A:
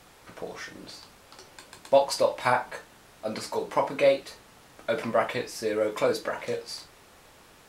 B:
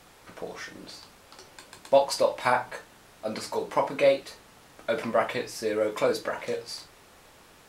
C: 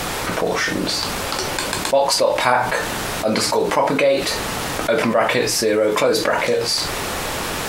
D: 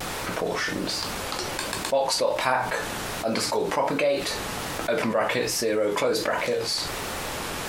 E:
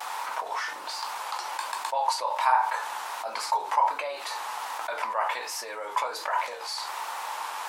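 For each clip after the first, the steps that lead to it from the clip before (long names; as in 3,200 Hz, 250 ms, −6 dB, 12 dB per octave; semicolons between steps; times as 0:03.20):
mains-hum notches 60/120 Hz
envelope flattener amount 70%; level +2 dB
pitch vibrato 1.3 Hz 57 cents; level −7 dB
high-pass with resonance 920 Hz, resonance Q 4.9; level −7.5 dB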